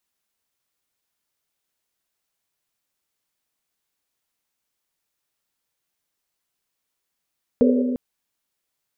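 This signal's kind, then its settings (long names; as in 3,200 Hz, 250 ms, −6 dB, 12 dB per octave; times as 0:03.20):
drum after Risset length 0.35 s, pitch 250 Hz, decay 2.55 s, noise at 470 Hz, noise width 130 Hz, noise 30%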